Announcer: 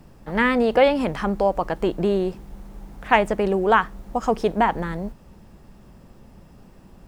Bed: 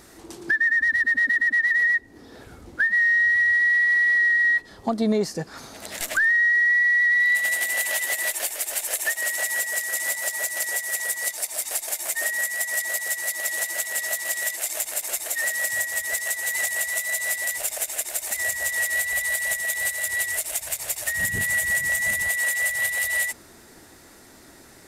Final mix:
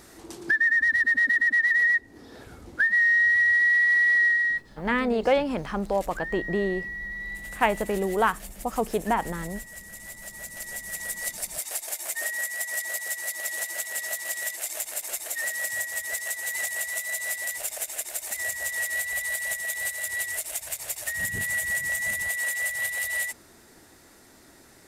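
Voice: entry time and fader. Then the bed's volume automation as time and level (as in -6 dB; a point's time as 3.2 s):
4.50 s, -5.5 dB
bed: 4.26 s -1 dB
5.07 s -16.5 dB
10.01 s -16.5 dB
11.27 s -4.5 dB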